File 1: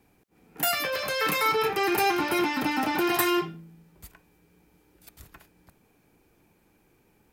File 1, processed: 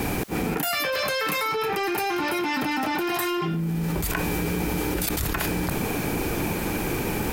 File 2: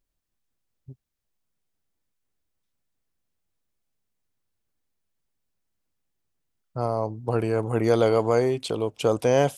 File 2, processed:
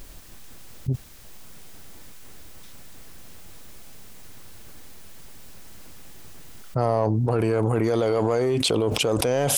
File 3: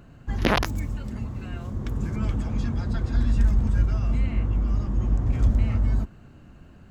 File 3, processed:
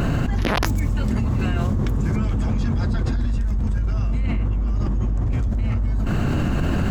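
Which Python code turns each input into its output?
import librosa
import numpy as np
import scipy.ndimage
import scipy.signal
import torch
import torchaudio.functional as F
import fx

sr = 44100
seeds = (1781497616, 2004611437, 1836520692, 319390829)

p1 = 10.0 ** (-23.0 / 20.0) * np.tanh(x / 10.0 ** (-23.0 / 20.0))
p2 = x + F.gain(torch.from_numpy(p1), -3.5).numpy()
p3 = fx.env_flatten(p2, sr, amount_pct=100)
y = F.gain(torch.from_numpy(p3), -7.0).numpy()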